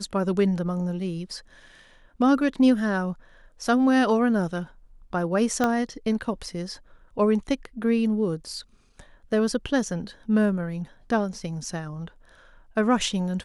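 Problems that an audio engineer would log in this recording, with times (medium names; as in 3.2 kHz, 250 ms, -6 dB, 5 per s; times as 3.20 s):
5.64 s: pop -10 dBFS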